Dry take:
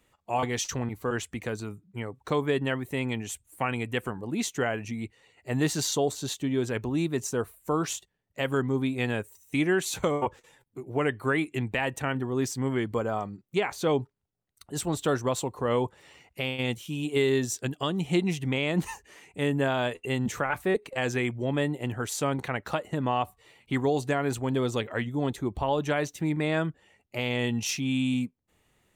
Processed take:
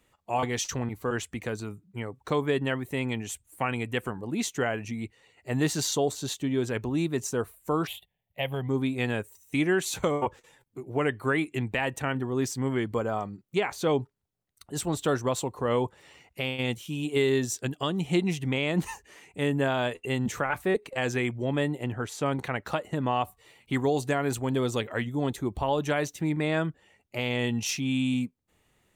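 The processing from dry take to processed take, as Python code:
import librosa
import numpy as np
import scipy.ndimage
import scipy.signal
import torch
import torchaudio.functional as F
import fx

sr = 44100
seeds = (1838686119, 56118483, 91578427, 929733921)

y = fx.curve_eq(x, sr, hz=(160.0, 310.0, 730.0, 1400.0, 2100.0, 3500.0, 6100.0, 12000.0), db=(0, -13, 4, -15, 1, 2, -28, 4), at=(7.87, 8.69))
y = fx.high_shelf(y, sr, hz=4700.0, db=-11.0, at=(21.84, 22.26))
y = fx.high_shelf(y, sr, hz=7800.0, db=5.5, at=(23.14, 26.14))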